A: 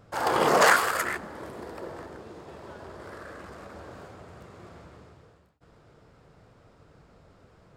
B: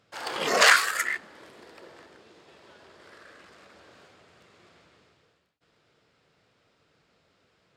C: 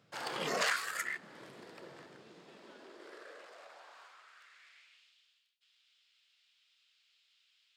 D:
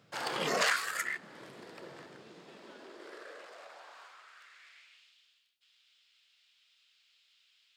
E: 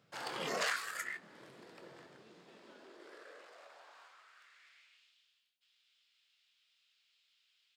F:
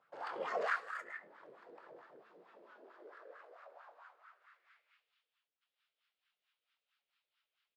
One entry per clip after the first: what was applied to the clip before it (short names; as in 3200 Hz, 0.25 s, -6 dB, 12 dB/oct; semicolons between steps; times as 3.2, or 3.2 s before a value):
spectral noise reduction 8 dB; weighting filter D; gain -2.5 dB
compressor 2:1, threshold -35 dBFS, peak gain reduction 12 dB; high-pass sweep 140 Hz -> 3100 Hz, 2.21–5.12; gain -3.5 dB
vocal rider 2 s; gain +3 dB
doubler 23 ms -11 dB; gain -6.5 dB
echo 0.107 s -12.5 dB; wah 4.5 Hz 450–1400 Hz, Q 2.8; gain +6 dB